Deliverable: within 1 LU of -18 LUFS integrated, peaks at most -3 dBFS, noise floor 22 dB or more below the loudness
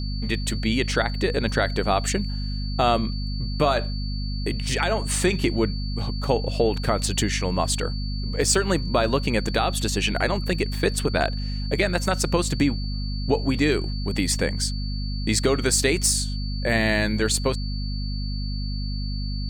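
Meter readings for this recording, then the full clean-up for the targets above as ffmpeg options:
hum 50 Hz; highest harmonic 250 Hz; hum level -25 dBFS; steady tone 4.5 kHz; tone level -37 dBFS; loudness -24.0 LUFS; peak level -7.0 dBFS; loudness target -18.0 LUFS
-> -af "bandreject=f=50:t=h:w=4,bandreject=f=100:t=h:w=4,bandreject=f=150:t=h:w=4,bandreject=f=200:t=h:w=4,bandreject=f=250:t=h:w=4"
-af "bandreject=f=4500:w=30"
-af "volume=2,alimiter=limit=0.708:level=0:latency=1"

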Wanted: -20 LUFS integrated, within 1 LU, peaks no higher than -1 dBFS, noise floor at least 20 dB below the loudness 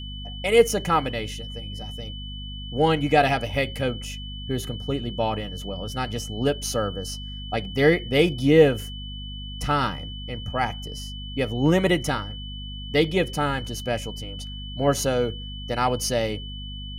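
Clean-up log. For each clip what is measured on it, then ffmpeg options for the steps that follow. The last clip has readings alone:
hum 50 Hz; highest harmonic 250 Hz; hum level -34 dBFS; steady tone 3 kHz; tone level -38 dBFS; loudness -24.5 LUFS; peak level -4.5 dBFS; loudness target -20.0 LUFS
-> -af "bandreject=f=50:t=h:w=4,bandreject=f=100:t=h:w=4,bandreject=f=150:t=h:w=4,bandreject=f=200:t=h:w=4,bandreject=f=250:t=h:w=4"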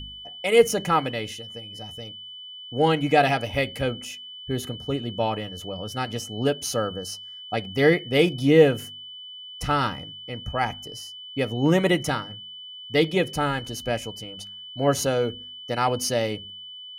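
hum not found; steady tone 3 kHz; tone level -38 dBFS
-> -af "bandreject=f=3000:w=30"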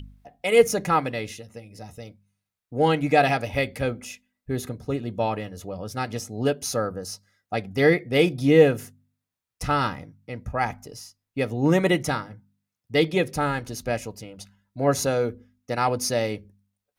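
steady tone not found; loudness -24.0 LUFS; peak level -4.0 dBFS; loudness target -20.0 LUFS
-> -af "volume=1.58,alimiter=limit=0.891:level=0:latency=1"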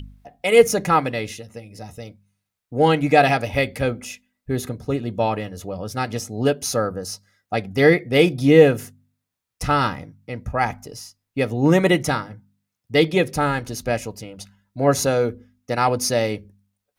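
loudness -20.0 LUFS; peak level -1.0 dBFS; noise floor -82 dBFS

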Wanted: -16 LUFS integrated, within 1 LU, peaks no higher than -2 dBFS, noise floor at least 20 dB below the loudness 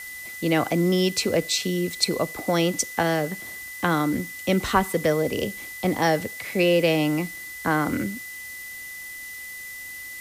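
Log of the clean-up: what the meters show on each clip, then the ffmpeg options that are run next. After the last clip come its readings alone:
steady tone 2 kHz; tone level -36 dBFS; noise floor -38 dBFS; noise floor target -44 dBFS; loudness -24.0 LUFS; peak level -5.5 dBFS; loudness target -16.0 LUFS
-> -af "bandreject=f=2000:w=30"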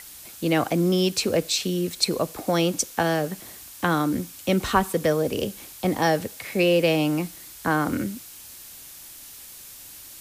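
steady tone not found; noise floor -43 dBFS; noise floor target -44 dBFS
-> -af "afftdn=nr=6:nf=-43"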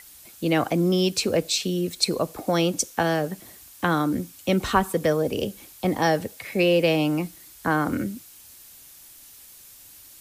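noise floor -48 dBFS; loudness -24.0 LUFS; peak level -5.5 dBFS; loudness target -16.0 LUFS
-> -af "volume=2.51,alimiter=limit=0.794:level=0:latency=1"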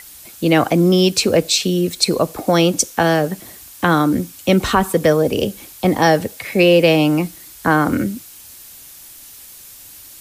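loudness -16.5 LUFS; peak level -2.0 dBFS; noise floor -40 dBFS

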